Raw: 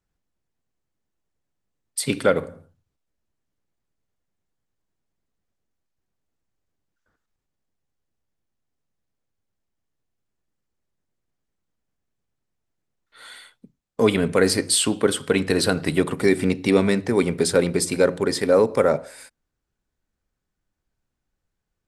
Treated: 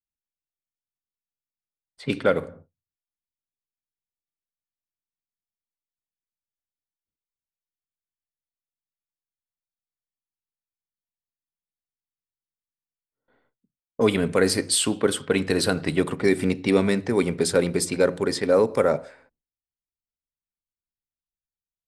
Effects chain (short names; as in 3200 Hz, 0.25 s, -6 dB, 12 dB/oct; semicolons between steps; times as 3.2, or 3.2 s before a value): gate with hold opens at -33 dBFS; low-pass opened by the level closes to 330 Hz, open at -17.5 dBFS; gain -2 dB